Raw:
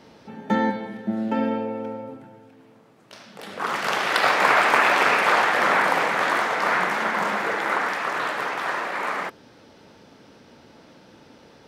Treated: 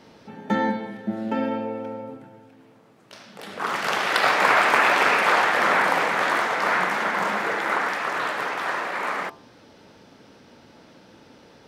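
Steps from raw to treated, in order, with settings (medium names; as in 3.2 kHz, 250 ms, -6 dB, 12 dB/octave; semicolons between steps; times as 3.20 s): de-hum 74.39 Hz, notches 16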